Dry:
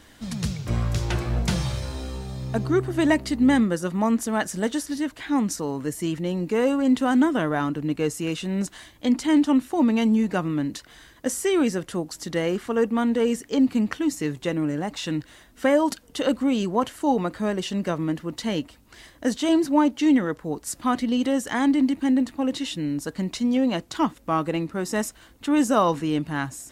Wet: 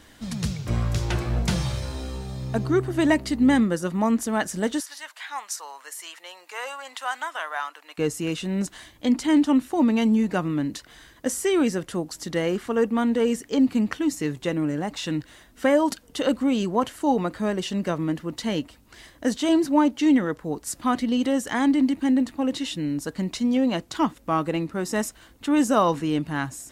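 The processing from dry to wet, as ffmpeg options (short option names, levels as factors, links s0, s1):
-filter_complex "[0:a]asettb=1/sr,asplit=3[s0][s1][s2];[s0]atrim=end=4.804[s3];[s1]atrim=start=4.8:end=7.98,asetpts=PTS-STARTPTS,afade=t=in:d=0.004:c=qsin,afade=t=out:st=3.176:d=0.004:c=qsin,highpass=f=810:w=0.5412,highpass=f=810:w=1.3066[s4];[s2]atrim=start=7.976[s5];[s3][s4]acrossfade=d=0.004:c1=hsin:c2=qsin[s6];[s6][s5]acrossfade=d=0.004:c1=qsin:c2=hsin"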